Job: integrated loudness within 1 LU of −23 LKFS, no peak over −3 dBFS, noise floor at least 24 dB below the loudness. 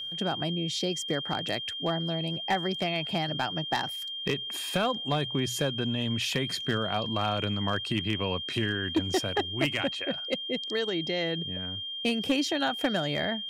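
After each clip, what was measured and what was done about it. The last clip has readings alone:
share of clipped samples 0.2%; peaks flattened at −18.5 dBFS; interfering tone 3,200 Hz; level of the tone −34 dBFS; integrated loudness −29.5 LKFS; sample peak −18.5 dBFS; target loudness −23.0 LKFS
→ clipped peaks rebuilt −18.5 dBFS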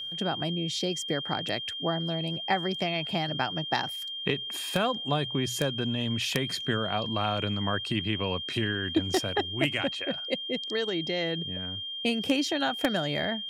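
share of clipped samples 0.0%; interfering tone 3,200 Hz; level of the tone −34 dBFS
→ notch filter 3,200 Hz, Q 30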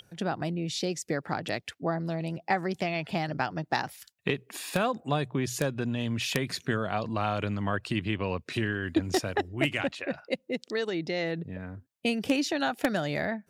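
interfering tone none found; integrated loudness −31.0 LKFS; sample peak −9.0 dBFS; target loudness −23.0 LKFS
→ level +8 dB
brickwall limiter −3 dBFS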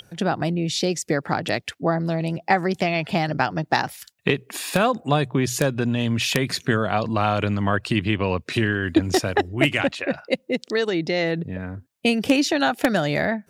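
integrated loudness −23.0 LKFS; sample peak −3.0 dBFS; background noise floor −62 dBFS

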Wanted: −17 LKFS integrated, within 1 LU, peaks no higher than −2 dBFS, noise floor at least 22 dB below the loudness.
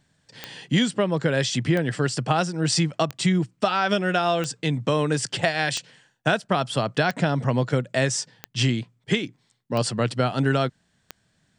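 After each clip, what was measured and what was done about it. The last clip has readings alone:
number of clicks 9; integrated loudness −24.0 LKFS; sample peak −5.0 dBFS; target loudness −17.0 LKFS
→ click removal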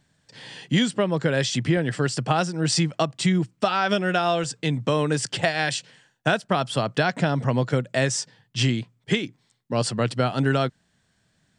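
number of clicks 0; integrated loudness −24.0 LKFS; sample peak −5.0 dBFS; target loudness −17.0 LKFS
→ level +7 dB
brickwall limiter −2 dBFS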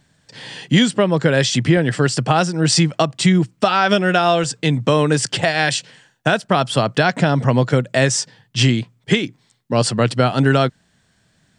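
integrated loudness −17.0 LKFS; sample peak −2.0 dBFS; background noise floor −61 dBFS

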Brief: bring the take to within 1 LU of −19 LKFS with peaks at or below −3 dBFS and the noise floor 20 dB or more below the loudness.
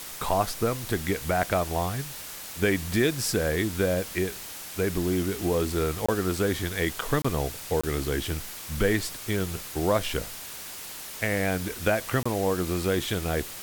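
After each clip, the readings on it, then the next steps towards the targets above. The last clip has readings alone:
number of dropouts 4; longest dropout 25 ms; background noise floor −40 dBFS; target noise floor −48 dBFS; integrated loudness −28.0 LKFS; sample peak −9.5 dBFS; target loudness −19.0 LKFS
→ repair the gap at 0:06.06/0:07.22/0:07.81/0:12.23, 25 ms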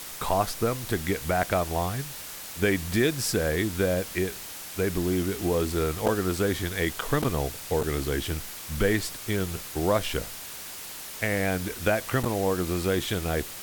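number of dropouts 0; background noise floor −40 dBFS; target noise floor −48 dBFS
→ broadband denoise 8 dB, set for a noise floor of −40 dBFS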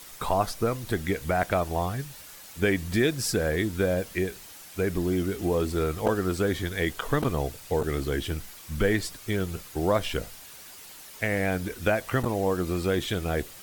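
background noise floor −46 dBFS; target noise floor −48 dBFS
→ broadband denoise 6 dB, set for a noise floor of −46 dBFS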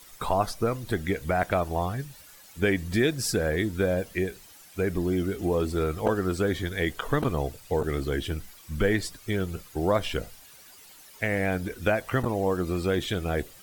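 background noise floor −51 dBFS; integrated loudness −28.0 LKFS; sample peak −9.5 dBFS; target loudness −19.0 LKFS
→ level +9 dB
brickwall limiter −3 dBFS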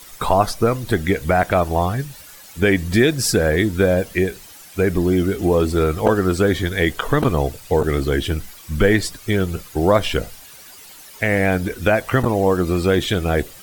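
integrated loudness −19.0 LKFS; sample peak −3.0 dBFS; background noise floor −42 dBFS

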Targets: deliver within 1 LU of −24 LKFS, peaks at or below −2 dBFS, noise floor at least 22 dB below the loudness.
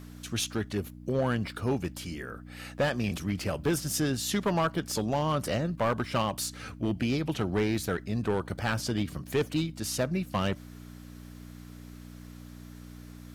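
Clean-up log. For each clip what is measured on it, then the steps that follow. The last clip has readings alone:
share of clipped samples 1.0%; peaks flattened at −21.0 dBFS; mains hum 60 Hz; hum harmonics up to 300 Hz; level of the hum −43 dBFS; integrated loudness −30.5 LKFS; sample peak −21.0 dBFS; target loudness −24.0 LKFS
→ clipped peaks rebuilt −21 dBFS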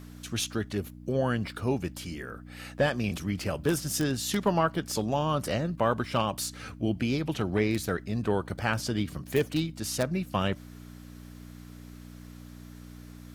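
share of clipped samples 0.0%; mains hum 60 Hz; hum harmonics up to 300 Hz; level of the hum −43 dBFS
→ hum removal 60 Hz, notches 5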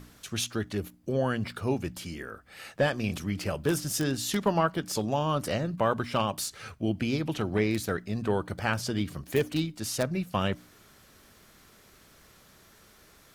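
mains hum none found; integrated loudness −30.0 LKFS; sample peak −11.5 dBFS; target loudness −24.0 LKFS
→ level +6 dB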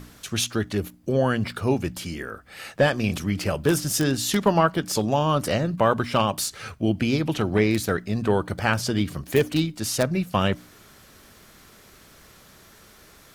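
integrated loudness −24.0 LKFS; sample peak −5.5 dBFS; background noise floor −52 dBFS

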